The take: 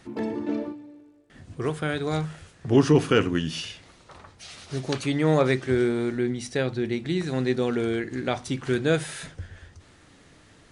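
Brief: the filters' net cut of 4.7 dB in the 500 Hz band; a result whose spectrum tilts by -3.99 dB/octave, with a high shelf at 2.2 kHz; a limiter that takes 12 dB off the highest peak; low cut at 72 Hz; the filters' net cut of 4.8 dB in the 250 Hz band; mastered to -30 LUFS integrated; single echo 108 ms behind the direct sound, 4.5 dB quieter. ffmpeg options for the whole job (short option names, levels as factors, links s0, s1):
-af "highpass=72,equalizer=f=250:t=o:g=-5,equalizer=f=500:t=o:g=-4.5,highshelf=f=2200:g=7.5,alimiter=limit=0.119:level=0:latency=1,aecho=1:1:108:0.596"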